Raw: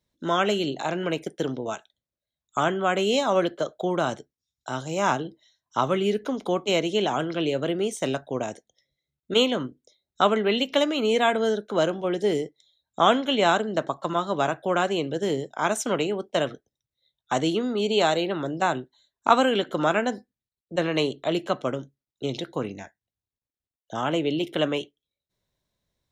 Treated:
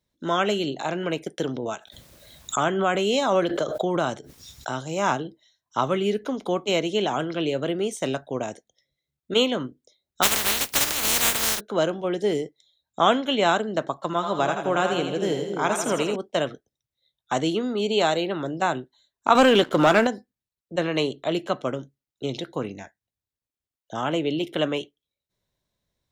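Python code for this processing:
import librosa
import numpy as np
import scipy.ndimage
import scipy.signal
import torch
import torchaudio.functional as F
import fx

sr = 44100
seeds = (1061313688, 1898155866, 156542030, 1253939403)

y = fx.pre_swell(x, sr, db_per_s=39.0, at=(1.38, 4.79))
y = fx.spec_flatten(y, sr, power=0.1, at=(10.22, 11.59), fade=0.02)
y = fx.echo_split(y, sr, split_hz=490.0, low_ms=268, high_ms=82, feedback_pct=52, wet_db=-5.5, at=(14.12, 16.16))
y = fx.leveller(y, sr, passes=2, at=(19.35, 20.07))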